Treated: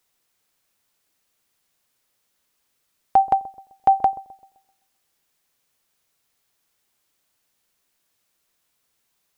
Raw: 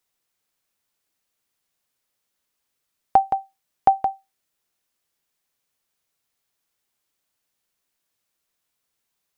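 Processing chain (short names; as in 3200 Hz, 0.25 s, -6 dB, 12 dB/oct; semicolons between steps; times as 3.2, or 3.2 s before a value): limiter -13.5 dBFS, peak gain reduction 8.5 dB; dark delay 0.129 s, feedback 40%, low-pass 650 Hz, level -16 dB; gain +6 dB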